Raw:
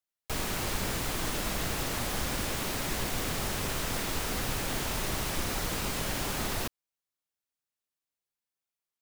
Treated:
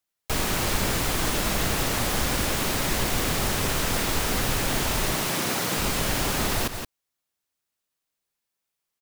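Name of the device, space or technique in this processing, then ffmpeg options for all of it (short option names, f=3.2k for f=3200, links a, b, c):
ducked delay: -filter_complex "[0:a]asettb=1/sr,asplit=3[a][b][c];[a]atrim=end=5.134[d];[b]atrim=start=5.13:end=5.77,asetpts=PTS-STARTPTS,afade=t=in:d=0.004:c=qsin,afade=t=out:st=0.636:d=0.004:c=qsin,highpass=f=120:w=0.5412,highpass=f=120:w=1.3066[e];[c]atrim=start=5.766[f];[d][e]acrossfade=d=0.004:c1=hsin:c2=qsin[g];[g][f]acrossfade=d=0.004:c1=qsin:c2=hsin,asplit=3[h][i][j];[i]adelay=172,volume=-7.5dB[k];[j]apad=whole_len=405050[l];[k][l]sidechaincompress=threshold=-36dB:ratio=8:attack=6.9:release=113[m];[h][m]amix=inputs=2:normalize=0,volume=7dB"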